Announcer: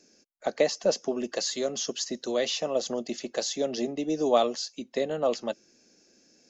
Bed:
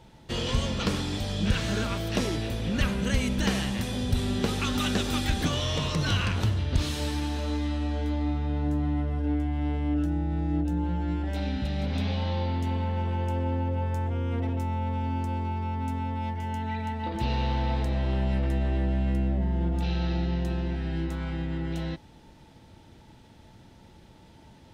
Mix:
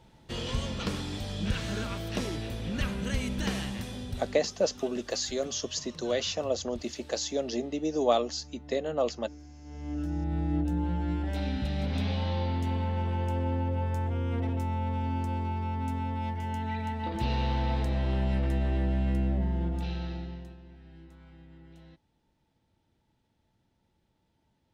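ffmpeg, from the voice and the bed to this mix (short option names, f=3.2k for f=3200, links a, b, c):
-filter_complex "[0:a]adelay=3750,volume=-2dB[a];[1:a]volume=14.5dB,afade=t=out:st=3.63:d=0.88:silence=0.158489,afade=t=in:st=9.64:d=0.72:silence=0.105925,afade=t=out:st=19.39:d=1.18:silence=0.105925[b];[a][b]amix=inputs=2:normalize=0"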